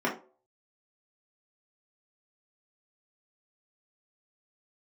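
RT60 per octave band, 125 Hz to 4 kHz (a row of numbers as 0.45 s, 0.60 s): 0.35 s, 0.35 s, 0.45 s, 0.35 s, 0.25 s, 0.20 s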